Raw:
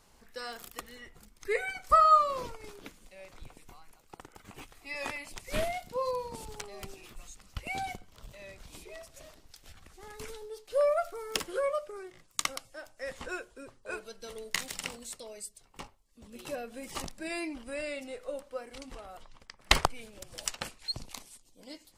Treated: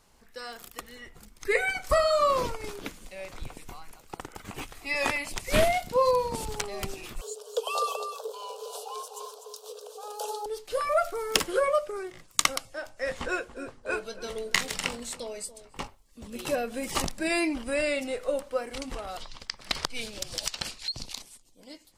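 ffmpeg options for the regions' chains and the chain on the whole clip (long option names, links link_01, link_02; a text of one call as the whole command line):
ffmpeg -i in.wav -filter_complex "[0:a]asettb=1/sr,asplit=3[link_01][link_02][link_03];[link_01]atrim=end=7.214[link_04];[link_02]atrim=start=7.21:end=10.46,asetpts=PTS-STARTPTS,afade=type=in:duration=0.004:curve=qsin,afade=type=out:start_time=3.246:duration=0.004:curve=qsin,aecho=1:1:249:0.398,atrim=end_sample=143325,afreqshift=410,asuperstop=centerf=2000:order=4:qfactor=0.98[link_05];[link_03]atrim=start=10.456[link_06];[link_04][link_05]acrossfade=duration=0.004:curve1=hsin:curve2=qsin[link_07];[link_07][link_06]acrossfade=duration=0.004:curve1=qsin:curve2=hsin,asettb=1/sr,asplit=3[link_08][link_09][link_10];[link_08]atrim=end=12.654[link_11];[link_09]atrim=start=12.65:end=15.82,asetpts=PTS-STARTPTS,afade=type=in:duration=0.004:curve=qsin,afade=type=out:start_time=3.166:duration=0.004:curve=qsin,highshelf=frequency=8600:gain=-8.5,asplit=2[link_12][link_13];[link_13]adelay=21,volume=-12.5dB[link_14];[link_12][link_14]amix=inputs=2:normalize=0,atrim=end_sample=139797,asplit=2[link_15][link_16];[link_16]adelay=284,lowpass=frequency=1200:poles=1,volume=-14dB,asplit=2[link_17][link_18];[link_18]adelay=284,lowpass=frequency=1200:poles=1,volume=0.29,asplit=2[link_19][link_20];[link_20]adelay=284,lowpass=frequency=1200:poles=1,volume=0.29[link_21];[link_15][link_17][link_19][link_21]amix=inputs=4:normalize=0,atrim=end_sample=139797[link_22];[link_10]atrim=start=15.816[link_23];[link_11][link_22]acrossfade=duration=0.004:curve1=hsin:curve2=qsin[link_24];[link_24][link_23]acrossfade=duration=0.004:curve1=qsin:curve2=hsin,asettb=1/sr,asplit=3[link_25][link_26][link_27];[link_25]atrim=end=19.074[link_28];[link_26]atrim=start=19.07:end=21.22,asetpts=PTS-STARTPTS,afade=type=in:duration=0.004:curve=qsin,afade=type=out:start_time=2.146:duration=0.004:curve=qsin,equalizer=frequency=4500:width_type=o:width=1.3:gain=11.5,acompressor=threshold=-33dB:ratio=20:attack=3.2:release=140:knee=1:detection=peak[link_29];[link_27]atrim=start=21.216[link_30];[link_28][link_29]acrossfade=duration=0.004:curve1=hsin:curve2=qsin[link_31];[link_31][link_30]acrossfade=duration=0.004:curve1=qsin:curve2=hsin,afftfilt=real='re*lt(hypot(re,im),0.501)':imag='im*lt(hypot(re,im),0.501)':win_size=1024:overlap=0.75,dynaudnorm=framelen=130:gausssize=21:maxgain=9.5dB" out.wav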